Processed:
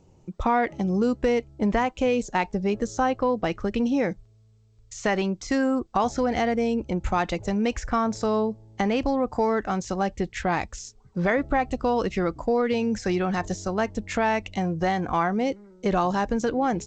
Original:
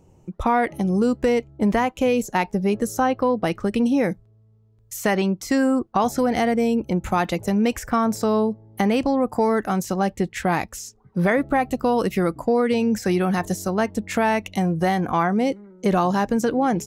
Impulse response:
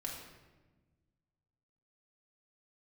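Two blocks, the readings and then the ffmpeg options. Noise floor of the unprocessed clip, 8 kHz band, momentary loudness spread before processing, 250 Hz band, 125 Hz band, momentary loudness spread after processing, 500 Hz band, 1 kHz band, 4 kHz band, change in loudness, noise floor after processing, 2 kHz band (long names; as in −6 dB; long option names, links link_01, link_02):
−56 dBFS, −5.0 dB, 4 LU, −4.5 dB, −4.5 dB, 5 LU, −3.0 dB, −2.5 dB, −2.5 dB, −3.5 dB, −57 dBFS, −2.5 dB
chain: -af "asubboost=boost=4:cutoff=72,volume=-2.5dB" -ar 16000 -c:a g722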